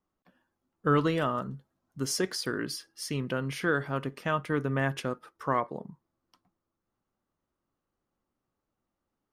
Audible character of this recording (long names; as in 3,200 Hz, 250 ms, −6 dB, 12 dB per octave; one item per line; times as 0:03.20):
background noise floor −86 dBFS
spectral slope −5.0 dB per octave